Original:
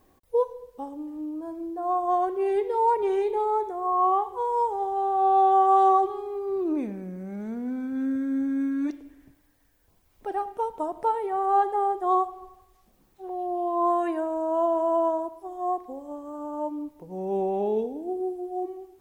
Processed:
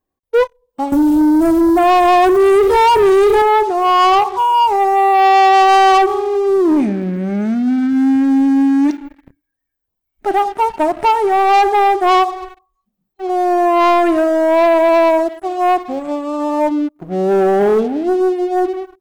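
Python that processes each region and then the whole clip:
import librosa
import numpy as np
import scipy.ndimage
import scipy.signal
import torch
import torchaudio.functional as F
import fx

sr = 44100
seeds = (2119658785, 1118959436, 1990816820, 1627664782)

y = fx.chain(x, sr, fx.bass_treble(bass_db=12, treble_db=12),
    fx.env_flatten(amount_pct=50), at=(0.92, 3.42))
y = fx.noise_reduce_blind(y, sr, reduce_db=18)
y = fx.leveller(y, sr, passes=3)
y = y * 10.0 ** (5.5 / 20.0)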